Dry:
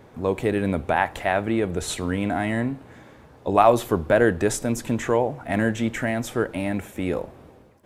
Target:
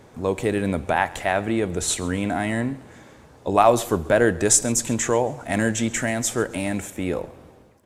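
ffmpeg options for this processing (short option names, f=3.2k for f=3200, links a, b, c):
-af "asetnsamples=n=441:p=0,asendcmd='4.45 equalizer g 15;6.9 equalizer g 4.5',equalizer=f=7.3k:t=o:w=1.3:g=8.5,aecho=1:1:135|270|405:0.0841|0.0294|0.0103"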